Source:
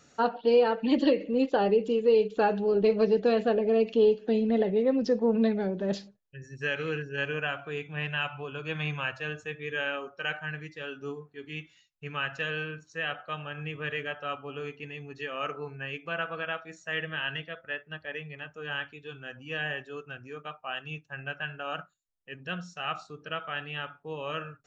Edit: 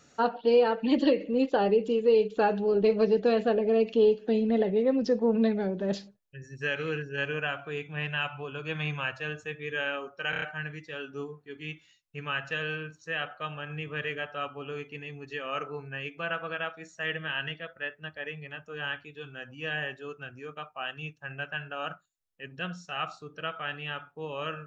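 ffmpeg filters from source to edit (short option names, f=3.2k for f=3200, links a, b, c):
-filter_complex "[0:a]asplit=5[a][b][c][d][e];[a]atrim=end=10.332[f];[b]atrim=start=10.298:end=10.332[g];[c]atrim=start=10.298:end=10.332[h];[d]atrim=start=10.298:end=10.332[i];[e]atrim=start=10.298[j];[f][g]acrossfade=d=0.004:c1=hsin:c2=hsin[k];[k][h]acrossfade=d=0.004:c1=hsin:c2=hsin[l];[l][i]acrossfade=d=0.004:c1=hsin:c2=hsin[m];[m][j]acrossfade=d=0.004:c1=hsin:c2=hsin"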